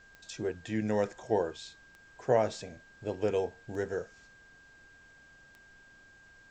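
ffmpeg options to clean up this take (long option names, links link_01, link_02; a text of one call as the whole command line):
ffmpeg -i in.wav -af "adeclick=threshold=4,bandreject=frequency=1600:width=30,agate=range=-21dB:threshold=-50dB" out.wav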